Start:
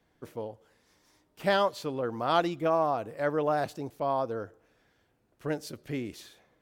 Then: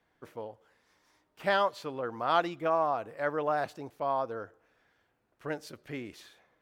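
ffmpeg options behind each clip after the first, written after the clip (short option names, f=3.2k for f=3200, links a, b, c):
-af "equalizer=f=1.4k:w=0.44:g=8.5,volume=-7.5dB"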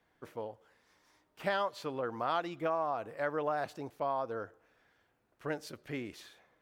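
-af "acompressor=threshold=-30dB:ratio=3"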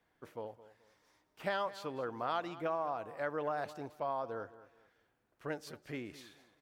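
-af "aecho=1:1:215|430|645:0.15|0.0419|0.0117,volume=-3dB"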